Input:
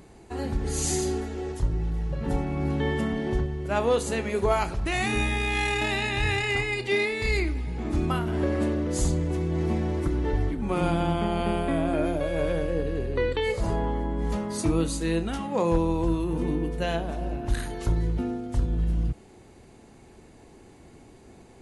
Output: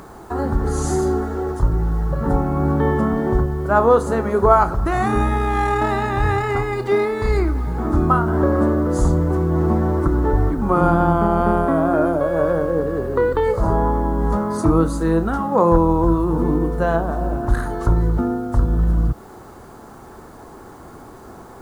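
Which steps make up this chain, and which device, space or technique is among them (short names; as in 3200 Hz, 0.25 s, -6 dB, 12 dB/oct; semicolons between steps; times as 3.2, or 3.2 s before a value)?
11.66–13.34 HPF 130 Hz 6 dB/oct; resonant high shelf 1800 Hz -11.5 dB, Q 3; noise-reduction cassette on a plain deck (mismatched tape noise reduction encoder only; wow and flutter 18 cents; white noise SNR 40 dB); gain +8 dB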